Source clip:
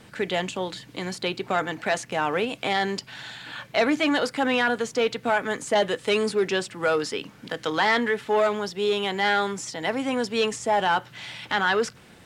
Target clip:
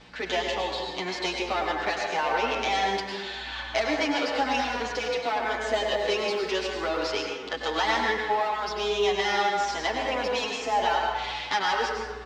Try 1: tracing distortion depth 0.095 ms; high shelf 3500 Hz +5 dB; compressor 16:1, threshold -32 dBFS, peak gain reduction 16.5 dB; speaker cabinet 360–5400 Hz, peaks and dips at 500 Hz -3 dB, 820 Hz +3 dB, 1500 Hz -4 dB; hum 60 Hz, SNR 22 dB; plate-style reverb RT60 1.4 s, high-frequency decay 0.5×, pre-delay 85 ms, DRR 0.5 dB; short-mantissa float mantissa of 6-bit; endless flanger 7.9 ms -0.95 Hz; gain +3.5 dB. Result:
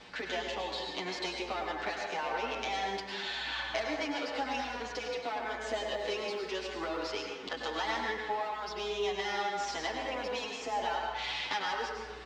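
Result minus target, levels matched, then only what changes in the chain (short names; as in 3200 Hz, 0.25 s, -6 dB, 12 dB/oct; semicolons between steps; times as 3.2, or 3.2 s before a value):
compressor: peak gain reduction +9 dB
change: compressor 16:1, threshold -22.5 dBFS, peak gain reduction 7.5 dB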